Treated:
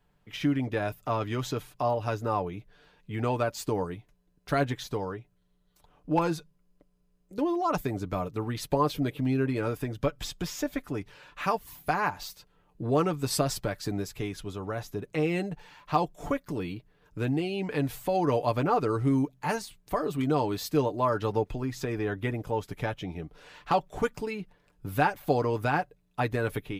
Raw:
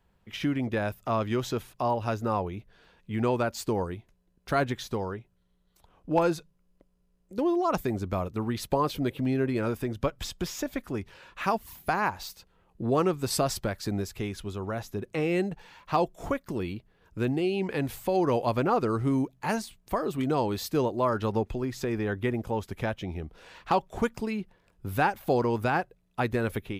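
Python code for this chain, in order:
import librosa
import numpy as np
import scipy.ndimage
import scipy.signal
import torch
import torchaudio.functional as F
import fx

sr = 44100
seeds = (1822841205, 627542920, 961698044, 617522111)

y = x + 0.53 * np.pad(x, (int(6.8 * sr / 1000.0), 0))[:len(x)]
y = F.gain(torch.from_numpy(y), -1.5).numpy()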